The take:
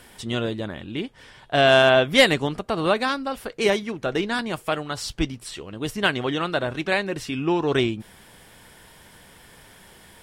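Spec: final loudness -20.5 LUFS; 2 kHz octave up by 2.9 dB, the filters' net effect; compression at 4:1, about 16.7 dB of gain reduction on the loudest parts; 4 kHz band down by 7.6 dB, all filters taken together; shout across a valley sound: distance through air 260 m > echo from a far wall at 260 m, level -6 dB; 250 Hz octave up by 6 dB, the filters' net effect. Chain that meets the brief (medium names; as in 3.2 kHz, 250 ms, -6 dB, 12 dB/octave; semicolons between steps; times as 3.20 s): peaking EQ 250 Hz +8 dB; peaking EQ 2 kHz +8.5 dB; peaking EQ 4 kHz -8 dB; compression 4:1, threshold -27 dBFS; distance through air 260 m; echo from a far wall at 260 m, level -6 dB; trim +11 dB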